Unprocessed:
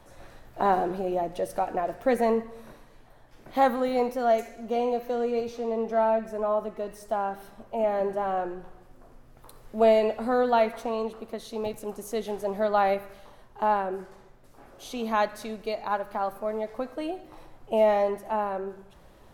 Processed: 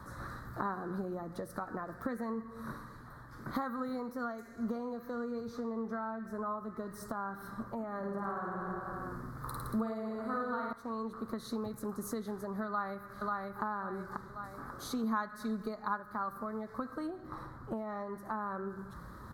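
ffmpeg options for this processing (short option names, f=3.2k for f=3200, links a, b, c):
-filter_complex "[0:a]asettb=1/sr,asplit=3[a][b][c];[a]atrim=end=7.984[d];[b]atrim=start=7.98:end=10.73,asetpts=PTS-STARTPTS,afade=t=in:d=0.004:c=qsin,afade=t=out:st=2.746:d=0.004:c=qsin,aecho=1:1:50|105|165.5|232|305.3|385.8|474.4|571.8|679:0.794|0.631|0.501|0.398|0.316|0.251|0.2|0.158|0.126,atrim=end_sample=121275[e];[c]atrim=start=10.726[f];[d][e]acrossfade=d=0.004:c1=hsin:c2=qsin[g];[g][f]acrossfade=d=0.004:c1=qsin:c2=hsin,asplit=2[h][i];[i]afade=t=in:st=12.67:d=0.01,afade=t=out:st=13.62:d=0.01,aecho=0:1:540|1080|1620|2160:0.501187|0.150356|0.0451069|0.0135321[j];[h][j]amix=inputs=2:normalize=0,asettb=1/sr,asplit=3[k][l][m];[k]atrim=end=15.034[n];[l]atrim=start=15.03:end=16,asetpts=PTS-STARTPTS,afade=t=in:d=0.004:c=qsin,afade=t=out:st=0.966:d=0.004:c=qsin,aecho=1:1:4.8:0.65,atrim=end_sample=42777[o];[m]atrim=start=15.996[p];[n][o]acrossfade=d=0.004:c1=hsin:c2=qsin[q];[q][p]acrossfade=d=0.004:c1=qsin:c2=hsin,asettb=1/sr,asplit=3[r][s][t];[r]atrim=end=17.074[u];[s]atrim=start=17.07:end=18.1,asetpts=PTS-STARTPTS,afade=t=in:d=0.004:c=qsin,afade=t=out:st=1.026:d=0.004:c=qsin,highshelf=f=5.4k:g=-7.5[v];[t]atrim=start=18.096[w];[u][v]acrossfade=d=0.004:c1=hsin:c2=qsin[x];[x][w]acrossfade=d=0.004:c1=qsin:c2=hsin,highpass=56,acompressor=threshold=-39dB:ratio=6,firequalizer=gain_entry='entry(210,0);entry(350,-7);entry(710,-15);entry(1200,6);entry(1800,-4);entry(2700,-29);entry(4000,-7);entry(5900,-11);entry(13000,-6)':delay=0.05:min_phase=1,volume=9.5dB"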